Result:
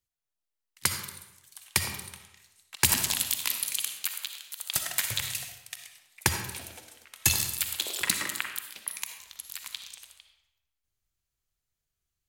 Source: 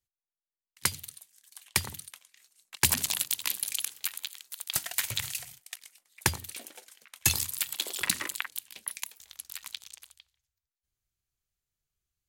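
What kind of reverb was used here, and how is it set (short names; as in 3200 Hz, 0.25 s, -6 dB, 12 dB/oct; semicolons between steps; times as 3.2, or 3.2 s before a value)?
digital reverb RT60 0.97 s, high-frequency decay 0.75×, pre-delay 20 ms, DRR 5 dB; gain +1 dB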